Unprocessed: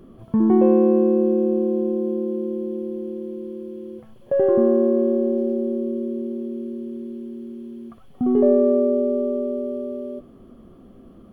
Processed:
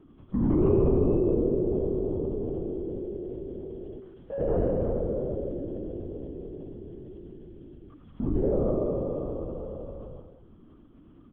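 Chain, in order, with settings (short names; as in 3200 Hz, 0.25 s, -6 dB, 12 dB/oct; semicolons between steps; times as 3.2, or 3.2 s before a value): bell 670 Hz -12.5 dB 0.54 oct; feedback echo 92 ms, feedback 49%, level -5.5 dB; LPC vocoder at 8 kHz whisper; gain -8 dB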